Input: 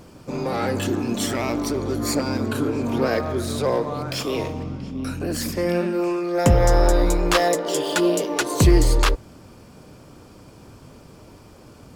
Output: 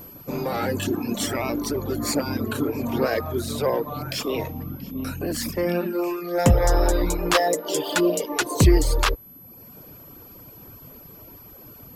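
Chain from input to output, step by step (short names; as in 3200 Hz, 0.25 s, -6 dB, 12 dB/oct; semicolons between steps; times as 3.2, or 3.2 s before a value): whine 12000 Hz -41 dBFS; reverb removal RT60 0.85 s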